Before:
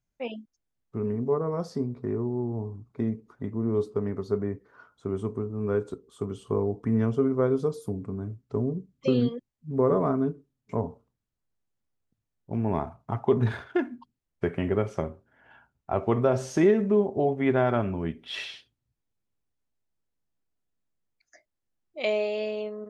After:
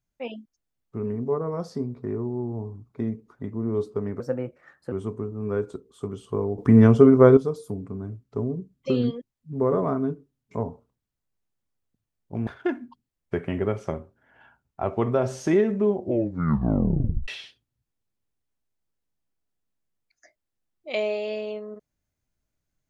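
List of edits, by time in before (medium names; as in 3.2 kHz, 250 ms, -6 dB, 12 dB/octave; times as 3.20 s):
4.20–5.10 s: speed 125%
6.76–7.55 s: gain +10.5 dB
12.65–13.57 s: delete
17.02 s: tape stop 1.36 s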